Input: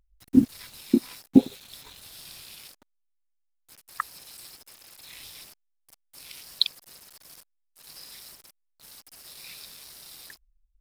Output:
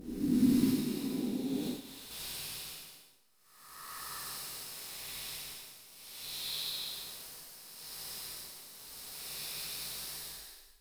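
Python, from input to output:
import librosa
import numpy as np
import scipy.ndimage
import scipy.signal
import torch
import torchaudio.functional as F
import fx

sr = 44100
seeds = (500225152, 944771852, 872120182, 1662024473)

y = fx.spec_blur(x, sr, span_ms=511.0)
y = fx.level_steps(y, sr, step_db=14, at=(0.71, 2.11))
y = fx.rev_gated(y, sr, seeds[0], gate_ms=140, shape='flat', drr_db=-5.5)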